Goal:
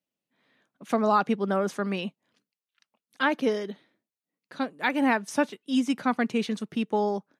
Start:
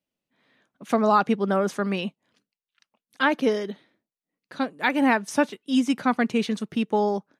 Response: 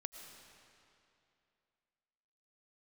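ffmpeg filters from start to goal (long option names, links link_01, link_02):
-af "highpass=92,volume=-3dB"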